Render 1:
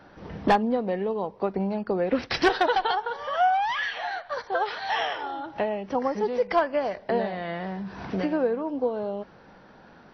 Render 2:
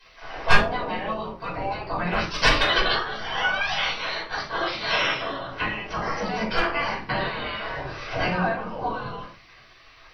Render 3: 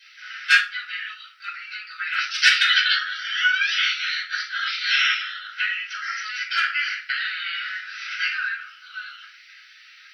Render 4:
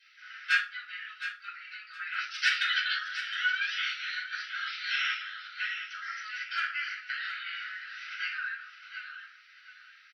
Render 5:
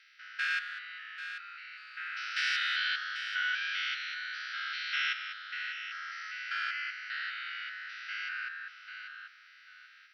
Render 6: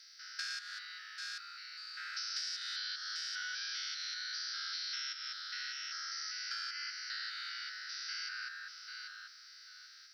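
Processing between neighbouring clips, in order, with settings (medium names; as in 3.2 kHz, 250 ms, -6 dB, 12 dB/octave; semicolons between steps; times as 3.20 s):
spectral gate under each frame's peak -15 dB weak; simulated room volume 240 m³, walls furnished, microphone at 5.1 m; trim +3.5 dB
Chebyshev high-pass 1.3 kHz, order 10; trim +5.5 dB
treble shelf 2.3 kHz -8 dB; on a send: feedback delay 715 ms, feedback 25%, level -11 dB; on the sum: trim -6.5 dB
spectrogram pixelated in time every 200 ms
resonant high shelf 3.7 kHz +11.5 dB, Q 3; compression 10:1, threshold -35 dBFS, peak gain reduction 14.5 dB; trim -2 dB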